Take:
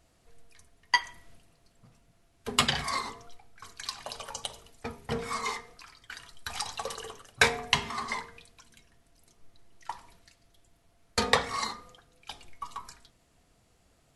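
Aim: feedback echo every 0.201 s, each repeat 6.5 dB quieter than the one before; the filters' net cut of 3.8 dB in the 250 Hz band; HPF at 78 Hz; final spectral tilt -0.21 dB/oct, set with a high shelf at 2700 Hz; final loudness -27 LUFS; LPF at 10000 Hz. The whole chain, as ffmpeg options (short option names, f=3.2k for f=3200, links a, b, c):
-af "highpass=78,lowpass=10k,equalizer=f=250:t=o:g=-4.5,highshelf=f=2.7k:g=8.5,aecho=1:1:201|402|603|804|1005|1206:0.473|0.222|0.105|0.0491|0.0231|0.0109"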